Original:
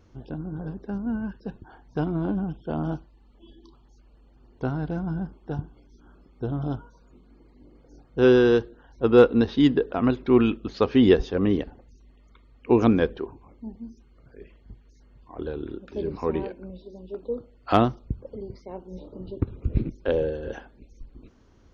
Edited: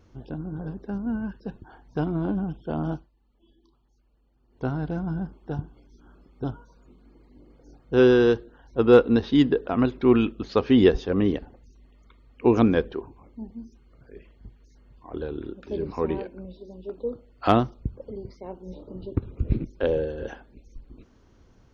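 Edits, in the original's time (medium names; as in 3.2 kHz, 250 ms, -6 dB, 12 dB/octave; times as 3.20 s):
2.92–4.66 s: dip -11 dB, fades 0.18 s
6.44–6.69 s: delete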